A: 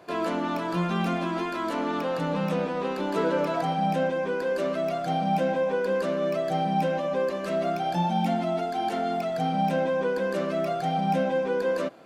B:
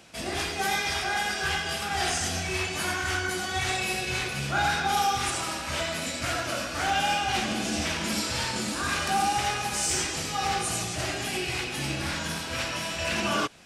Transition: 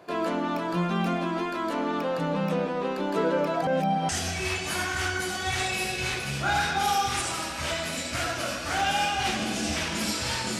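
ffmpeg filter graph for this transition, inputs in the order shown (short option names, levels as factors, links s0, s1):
-filter_complex "[0:a]apad=whole_dur=10.59,atrim=end=10.59,asplit=2[s0][s1];[s0]atrim=end=3.672[s2];[s1]atrim=start=3.668:end=4.092,asetpts=PTS-STARTPTS,areverse[s3];[1:a]atrim=start=2.178:end=8.68[s4];[s2][s3]acrossfade=d=0.004:c1=hsin:c2=hsin[s5];[s5][s4]acrossfade=d=0.004:c1=hsin:c2=hsin"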